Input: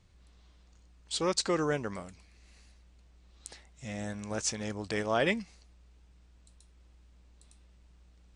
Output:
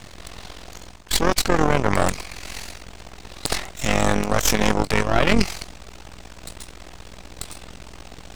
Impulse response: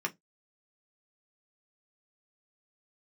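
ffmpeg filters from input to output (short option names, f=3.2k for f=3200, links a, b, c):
-filter_complex "[0:a]highpass=f=270:p=1,equalizer=f=720:w=2.9:g=5,areverse,acompressor=threshold=-43dB:ratio=16,areverse,aeval=exprs='max(val(0),0)':c=same,asplit=2[a][b];[b]asetrate=22050,aresample=44100,atempo=2,volume=-9dB[c];[a][c]amix=inputs=2:normalize=0,tremolo=f=44:d=0.75,alimiter=level_in=36dB:limit=-1dB:release=50:level=0:latency=1,volume=-1dB"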